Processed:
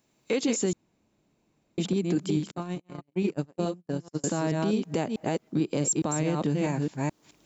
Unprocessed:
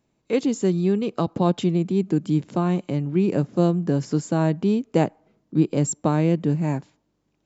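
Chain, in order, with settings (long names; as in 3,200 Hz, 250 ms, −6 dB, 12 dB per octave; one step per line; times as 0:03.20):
delay that plays each chunk backwards 215 ms, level −5 dB
camcorder AGC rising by 14 dB per second
0:02.51–0:04.24: noise gate −17 dBFS, range −51 dB
downward compressor 2.5 to 1, threshold −21 dBFS, peak gain reduction 6.5 dB
spectral tilt +2.5 dB per octave
brickwall limiter −18 dBFS, peak gain reduction 8 dB
low-shelf EQ 440 Hz +3.5 dB
0:00.73–0:01.78: fill with room tone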